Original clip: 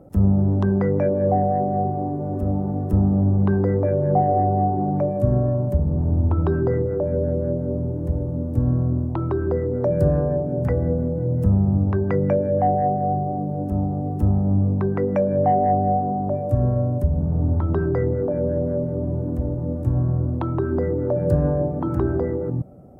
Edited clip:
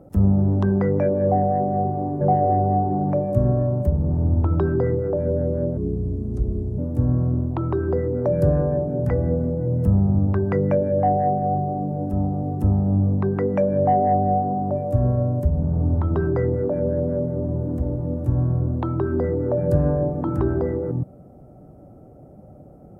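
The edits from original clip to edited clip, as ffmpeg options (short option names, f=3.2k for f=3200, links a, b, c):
-filter_complex "[0:a]asplit=4[a][b][c][d];[a]atrim=end=2.212[e];[b]atrim=start=4.078:end=7.644[f];[c]atrim=start=7.64:end=8.37,asetpts=PTS-STARTPTS,asetrate=31752,aresample=44100,atrim=end_sample=44712,asetpts=PTS-STARTPTS[g];[d]atrim=start=8.366[h];[e][f]acrossfade=d=0.004:c1=hsin:c2=hsin[i];[i][g]acrossfade=d=0.004:c1=hsin:c2=hsin[j];[j][h]acrossfade=d=0.004:c1=hsin:c2=hsin"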